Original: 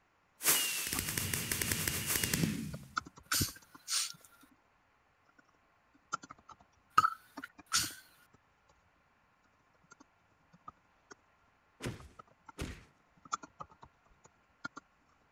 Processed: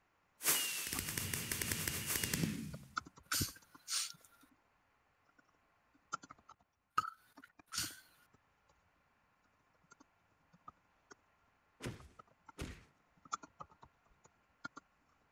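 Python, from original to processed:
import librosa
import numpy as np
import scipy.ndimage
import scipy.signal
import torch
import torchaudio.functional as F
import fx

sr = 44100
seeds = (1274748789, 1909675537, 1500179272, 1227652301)

y = fx.level_steps(x, sr, step_db=13, at=(6.51, 7.78))
y = F.gain(torch.from_numpy(y), -4.5).numpy()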